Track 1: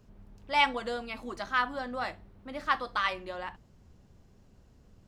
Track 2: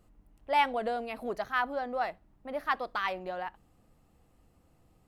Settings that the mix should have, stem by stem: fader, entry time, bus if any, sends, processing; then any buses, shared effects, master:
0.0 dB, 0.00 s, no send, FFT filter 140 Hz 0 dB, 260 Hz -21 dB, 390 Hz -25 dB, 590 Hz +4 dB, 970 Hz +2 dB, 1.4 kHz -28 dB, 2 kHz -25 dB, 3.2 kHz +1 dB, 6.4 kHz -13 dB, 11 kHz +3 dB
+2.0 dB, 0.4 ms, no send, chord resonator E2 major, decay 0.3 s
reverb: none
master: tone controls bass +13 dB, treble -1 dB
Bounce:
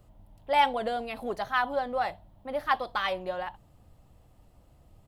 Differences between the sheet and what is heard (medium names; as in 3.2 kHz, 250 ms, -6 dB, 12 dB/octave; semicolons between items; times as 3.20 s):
stem 2: missing chord resonator E2 major, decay 0.3 s; master: missing tone controls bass +13 dB, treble -1 dB